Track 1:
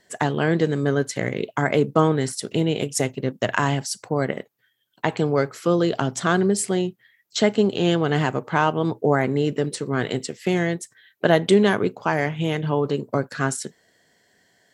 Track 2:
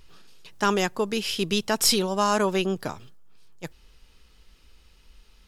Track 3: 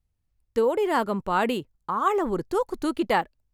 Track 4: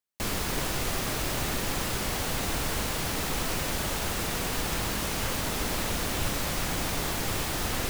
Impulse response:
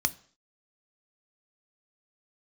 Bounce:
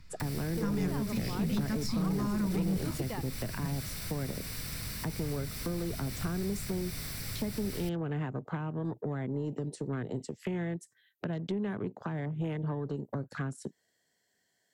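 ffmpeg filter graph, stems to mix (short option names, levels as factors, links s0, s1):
-filter_complex "[0:a]afwtdn=0.0251,acrossover=split=320|1800[s0][s1][s2];[s0]acompressor=threshold=0.0251:ratio=4[s3];[s1]acompressor=threshold=0.0282:ratio=4[s4];[s2]acompressor=threshold=0.00501:ratio=4[s5];[s3][s4][s5]amix=inputs=3:normalize=0,volume=1[s6];[1:a]lowpass=f=1300:p=1,volume=0.75,asplit=2[s7][s8];[s8]volume=0.596[s9];[2:a]volume=0.447[s10];[3:a]volume=0.376,asplit=2[s11][s12];[s12]volume=0.266[s13];[4:a]atrim=start_sample=2205[s14];[s9][s13]amix=inputs=2:normalize=0[s15];[s15][s14]afir=irnorm=-1:irlink=0[s16];[s6][s7][s10][s11][s16]amix=inputs=5:normalize=0,aemphasis=mode=production:type=cd,acrossover=split=270[s17][s18];[s18]acompressor=threshold=0.0126:ratio=6[s19];[s17][s19]amix=inputs=2:normalize=0,asoftclip=type=tanh:threshold=0.0668"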